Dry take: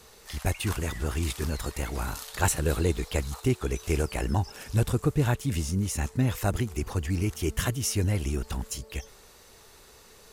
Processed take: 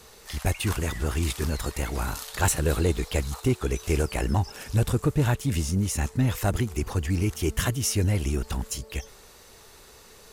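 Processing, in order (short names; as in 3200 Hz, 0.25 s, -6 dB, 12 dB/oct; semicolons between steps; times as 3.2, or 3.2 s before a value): in parallel at -9 dB: wavefolder -20.5 dBFS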